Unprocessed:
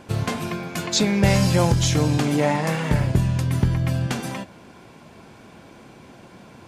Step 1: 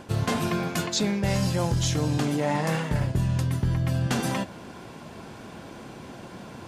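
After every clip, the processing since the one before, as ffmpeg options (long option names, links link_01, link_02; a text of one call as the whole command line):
ffmpeg -i in.wav -af "equalizer=frequency=2300:width=7:gain=-4.5,areverse,acompressor=threshold=-26dB:ratio=6,areverse,volume=4dB" out.wav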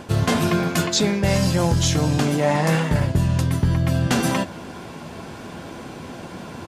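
ffmpeg -i in.wav -filter_complex "[0:a]asplit=2[link_01][link_02];[link_02]adelay=12,volume=-11dB[link_03];[link_01][link_03]amix=inputs=2:normalize=0,volume=6dB" out.wav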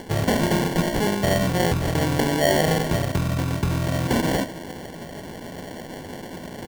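ffmpeg -i in.wav -filter_complex "[0:a]asplit=2[link_01][link_02];[link_02]highpass=frequency=720:poles=1,volume=9dB,asoftclip=type=tanh:threshold=-6.5dB[link_03];[link_01][link_03]amix=inputs=2:normalize=0,lowpass=frequency=2100:poles=1,volume=-6dB,acrusher=samples=35:mix=1:aa=0.000001" out.wav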